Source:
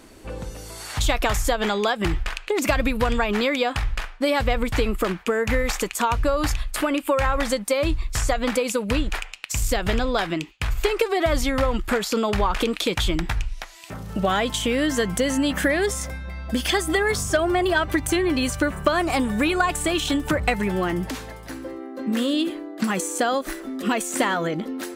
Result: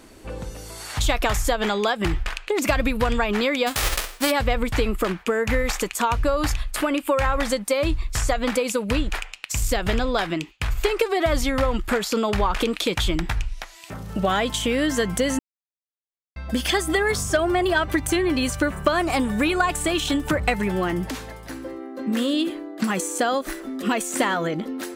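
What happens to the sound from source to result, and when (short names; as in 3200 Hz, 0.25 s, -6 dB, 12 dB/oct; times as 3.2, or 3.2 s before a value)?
3.66–4.3 spectral whitening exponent 0.3
15.39–16.36 mute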